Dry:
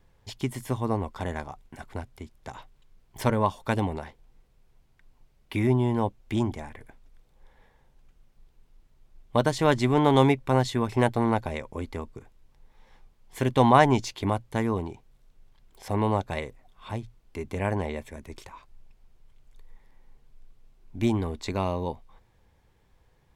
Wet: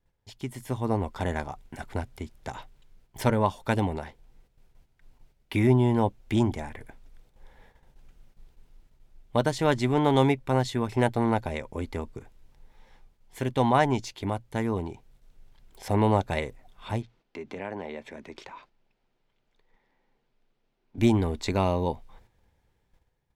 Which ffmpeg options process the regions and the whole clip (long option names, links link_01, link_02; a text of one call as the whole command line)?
ffmpeg -i in.wav -filter_complex "[0:a]asettb=1/sr,asplit=3[link_01][link_02][link_03];[link_01]atrim=end=17.024[link_04];[link_02]atrim=start=17.02:end=20.98,asetpts=PTS-STARTPTS,afade=type=in:duration=0.004:curve=qsin,afade=type=out:start_time=3.956:duration=0.004:curve=qsin,acrossover=split=170 5500:gain=0.126 1 0.1[link_05][link_06][link_07];[link_05][link_06][link_07]amix=inputs=3:normalize=0,acompressor=threshold=-43dB:ratio=2:attack=3.2:release=140:knee=1:detection=peak[link_08];[link_03]atrim=start=20.976[link_09];[link_04][link_08]acrossfade=duration=0.004:curve1=hsin:curve2=qsin[link_10];[link_10][link_09]acrossfade=duration=0.004:curve1=qsin:curve2=hsin,bandreject=frequency=1100:width=12,agate=range=-8dB:threshold=-59dB:ratio=16:detection=peak,dynaudnorm=framelen=320:gausssize=5:maxgain=12dB,volume=-7.5dB" out.wav